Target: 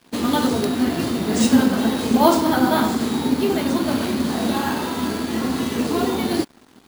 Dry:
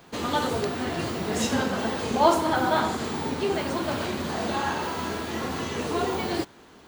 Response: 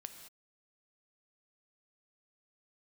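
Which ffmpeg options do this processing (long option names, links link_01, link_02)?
-af "equalizer=frequency=250:width_type=o:width=0.67:gain=12,equalizer=frequency=4000:width_type=o:width=0.67:gain=3,equalizer=frequency=10000:width_type=o:width=0.67:gain=8,acrusher=samples=3:mix=1:aa=0.000001,aeval=exprs='sgn(val(0))*max(abs(val(0))-0.00422,0)':channel_layout=same,volume=2.5dB"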